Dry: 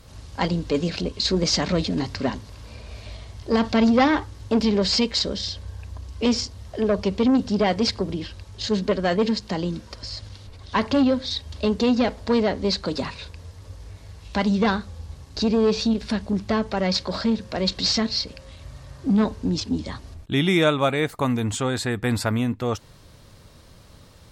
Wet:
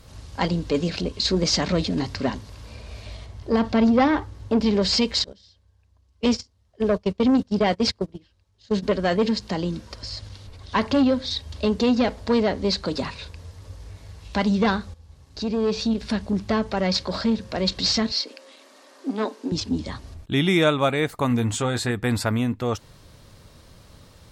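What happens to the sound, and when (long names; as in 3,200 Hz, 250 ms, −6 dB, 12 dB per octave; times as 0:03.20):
0:03.26–0:04.66: high-shelf EQ 2,300 Hz −7.5 dB
0:05.24–0:08.83: noise gate −25 dBFS, range −25 dB
0:14.94–0:16.14: fade in, from −14 dB
0:18.12–0:19.52: Butterworth high-pass 250 Hz 48 dB per octave
0:21.29–0:21.91: double-tracking delay 17 ms −8.5 dB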